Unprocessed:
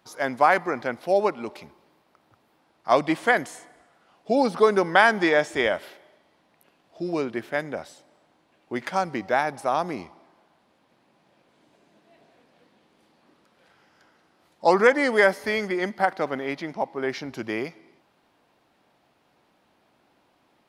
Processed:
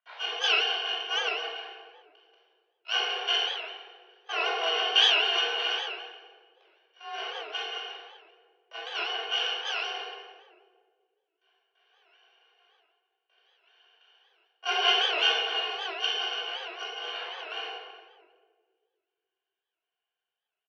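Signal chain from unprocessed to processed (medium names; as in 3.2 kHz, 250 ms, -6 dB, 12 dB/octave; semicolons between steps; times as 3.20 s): bit-reversed sample order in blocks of 128 samples; gate with hold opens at -50 dBFS; reverberation RT60 1.4 s, pre-delay 17 ms, DRR -4.5 dB; mistuned SSB +220 Hz 290–3300 Hz; echo from a far wall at 58 m, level -20 dB; warped record 78 rpm, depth 160 cents; trim +1 dB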